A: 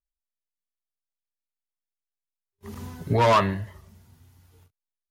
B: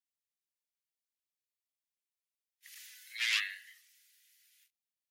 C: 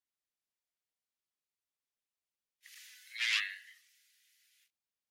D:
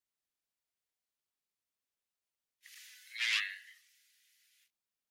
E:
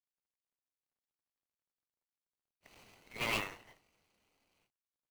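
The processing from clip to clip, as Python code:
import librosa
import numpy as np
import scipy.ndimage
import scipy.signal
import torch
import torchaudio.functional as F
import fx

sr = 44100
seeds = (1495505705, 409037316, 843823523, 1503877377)

y1 = scipy.signal.sosfilt(scipy.signal.butter(8, 1800.0, 'highpass', fs=sr, output='sos'), x)
y2 = fx.high_shelf(y1, sr, hz=10000.0, db=-9.5)
y3 = 10.0 ** (-18.5 / 20.0) * np.tanh(y2 / 10.0 ** (-18.5 / 20.0))
y4 = scipy.ndimage.median_filter(y3, 25, mode='constant')
y4 = F.gain(torch.from_numpy(y4), 7.5).numpy()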